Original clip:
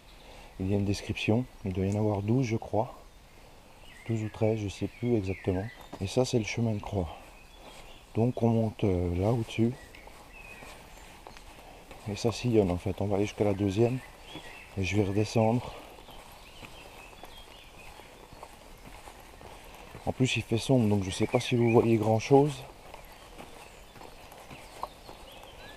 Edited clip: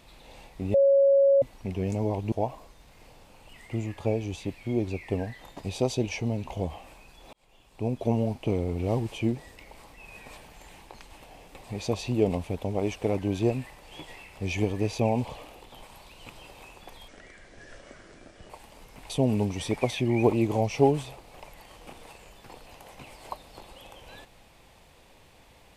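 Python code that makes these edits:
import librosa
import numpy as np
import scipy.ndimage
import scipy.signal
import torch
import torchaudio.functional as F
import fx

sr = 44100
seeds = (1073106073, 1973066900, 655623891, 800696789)

y = fx.edit(x, sr, fx.bleep(start_s=0.74, length_s=0.68, hz=553.0, db=-16.0),
    fx.cut(start_s=2.32, length_s=0.36),
    fx.fade_in_span(start_s=7.69, length_s=0.73),
    fx.speed_span(start_s=17.44, length_s=0.95, speed=0.67),
    fx.cut(start_s=18.99, length_s=1.62), tone=tone)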